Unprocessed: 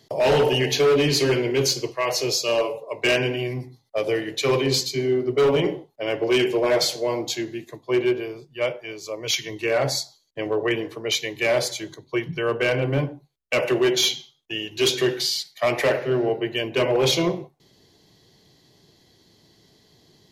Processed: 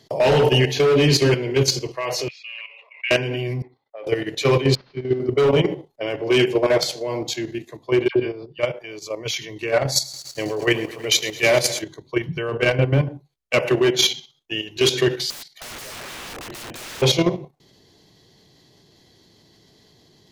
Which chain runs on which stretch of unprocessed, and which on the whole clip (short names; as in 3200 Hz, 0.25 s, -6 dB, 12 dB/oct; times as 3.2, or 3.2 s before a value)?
2.28–3.11 Butterworth band-pass 2300 Hz, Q 2.6 + sustainer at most 58 dB/s
3.62–4.07 three-band isolator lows -22 dB, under 340 Hz, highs -22 dB, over 2800 Hz + compressor 8:1, threshold -31 dBFS + polynomial smoothing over 15 samples
4.75–5.2 CVSD 32 kbps + air absorption 280 m + upward expander 2.5:1, over -30 dBFS
8.08–8.59 steep low-pass 5300 Hz 72 dB/oct + dispersion lows, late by 80 ms, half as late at 1100 Hz
9.92–11.82 high shelf 4800 Hz +10 dB + lo-fi delay 0.107 s, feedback 80%, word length 7-bit, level -13 dB
15.3–17.02 compressor 1.5:1, threshold -26 dBFS + wrapped overs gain 29 dB
whole clip: dynamic EQ 130 Hz, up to +5 dB, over -42 dBFS, Q 2; level quantiser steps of 10 dB; high shelf 12000 Hz -6 dB; gain +5 dB